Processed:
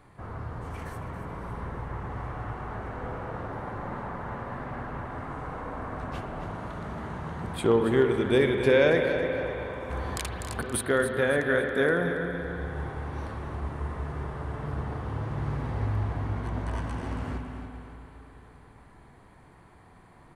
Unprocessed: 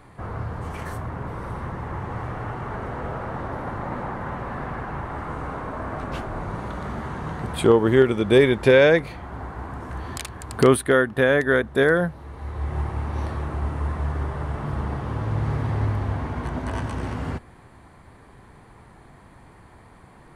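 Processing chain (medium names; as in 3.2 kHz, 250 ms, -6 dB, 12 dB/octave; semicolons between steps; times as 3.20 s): 9.90–10.81 s: compressor with a negative ratio -21 dBFS, ratio -0.5; feedback delay 277 ms, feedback 40%, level -10 dB; reverberation RT60 3.6 s, pre-delay 48 ms, DRR 4.5 dB; trim -7 dB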